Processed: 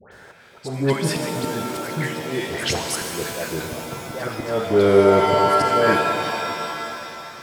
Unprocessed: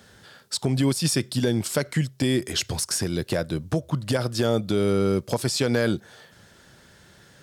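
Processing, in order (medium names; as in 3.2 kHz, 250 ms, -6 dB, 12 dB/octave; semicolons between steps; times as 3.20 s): high-order bell 920 Hz +9.5 dB 2.9 oct; phase dispersion highs, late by 118 ms, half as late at 1.4 kHz; slow attack 370 ms; pitch-shifted reverb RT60 2.8 s, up +7 st, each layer -2 dB, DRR 4.5 dB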